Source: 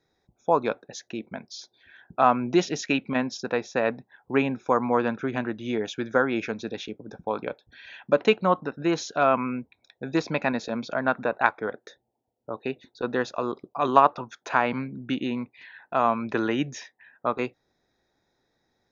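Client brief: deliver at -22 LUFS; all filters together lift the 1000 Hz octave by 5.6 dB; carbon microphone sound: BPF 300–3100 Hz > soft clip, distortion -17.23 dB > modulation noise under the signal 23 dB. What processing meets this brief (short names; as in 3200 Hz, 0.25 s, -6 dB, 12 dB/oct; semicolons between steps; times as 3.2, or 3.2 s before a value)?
BPF 300–3100 Hz; bell 1000 Hz +7 dB; soft clip -3.5 dBFS; modulation noise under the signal 23 dB; gain +2.5 dB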